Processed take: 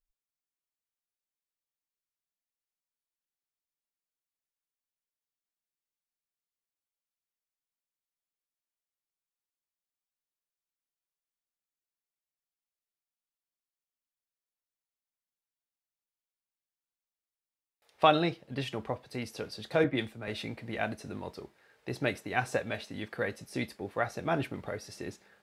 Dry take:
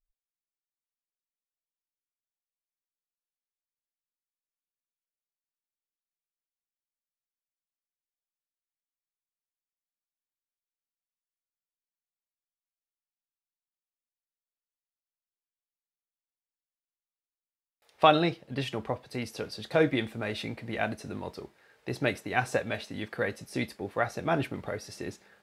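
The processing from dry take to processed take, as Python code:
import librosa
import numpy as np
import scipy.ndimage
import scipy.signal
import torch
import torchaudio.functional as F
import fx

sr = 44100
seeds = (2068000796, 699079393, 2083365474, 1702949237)

y = fx.band_widen(x, sr, depth_pct=100, at=(19.84, 20.28))
y = F.gain(torch.from_numpy(y), -2.5).numpy()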